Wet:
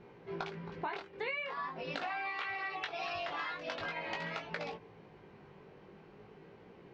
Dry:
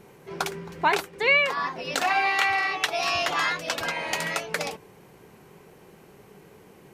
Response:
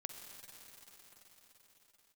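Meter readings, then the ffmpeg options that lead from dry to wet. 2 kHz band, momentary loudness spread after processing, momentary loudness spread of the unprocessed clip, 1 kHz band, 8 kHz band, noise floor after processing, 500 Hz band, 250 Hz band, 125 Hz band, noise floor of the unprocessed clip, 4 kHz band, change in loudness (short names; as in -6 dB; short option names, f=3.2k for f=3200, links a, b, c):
-14.5 dB, 20 LU, 12 LU, -13.5 dB, -28.5 dB, -57 dBFS, -11.5 dB, -8.5 dB, -7.5 dB, -52 dBFS, -15.5 dB, -14.5 dB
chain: -af "flanger=delay=17:depth=3.7:speed=0.44,lowpass=f=4.8k:w=0.5412,lowpass=f=4.8k:w=1.3066,aemphasis=mode=reproduction:type=cd,acompressor=threshold=-34dB:ratio=6,volume=-2dB"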